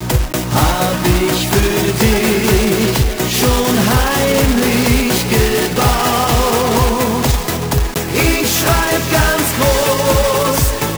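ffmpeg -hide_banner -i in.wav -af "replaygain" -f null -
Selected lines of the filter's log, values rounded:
track_gain = -2.7 dB
track_peak = 0.525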